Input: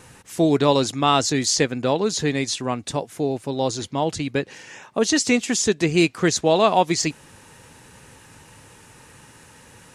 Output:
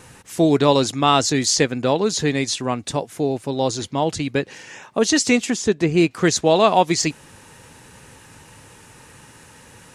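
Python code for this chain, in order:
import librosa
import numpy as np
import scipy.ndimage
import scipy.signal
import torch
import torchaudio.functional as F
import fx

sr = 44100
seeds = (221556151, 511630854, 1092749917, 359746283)

y = fx.high_shelf(x, sr, hz=2400.0, db=-9.0, at=(5.5, 6.11))
y = F.gain(torch.from_numpy(y), 2.0).numpy()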